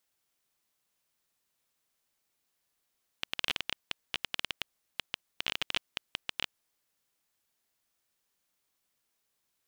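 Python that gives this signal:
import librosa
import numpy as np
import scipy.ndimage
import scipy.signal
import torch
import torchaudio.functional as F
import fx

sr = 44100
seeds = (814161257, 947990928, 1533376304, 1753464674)

y = fx.geiger_clicks(sr, seeds[0], length_s=3.59, per_s=12.0, level_db=-12.5)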